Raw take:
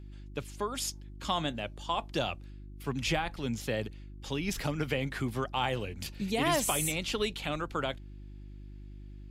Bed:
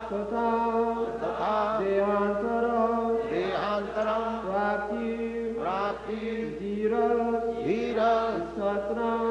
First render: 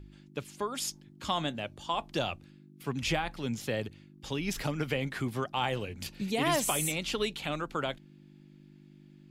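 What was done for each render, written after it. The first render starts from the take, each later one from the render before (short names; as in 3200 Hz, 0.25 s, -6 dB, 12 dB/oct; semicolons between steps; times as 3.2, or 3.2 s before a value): de-hum 50 Hz, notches 2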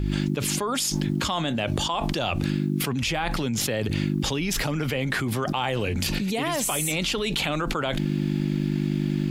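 fast leveller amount 100%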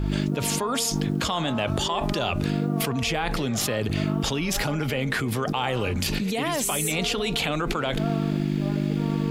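add bed -10 dB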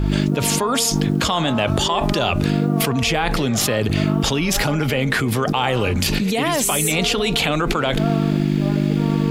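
gain +6.5 dB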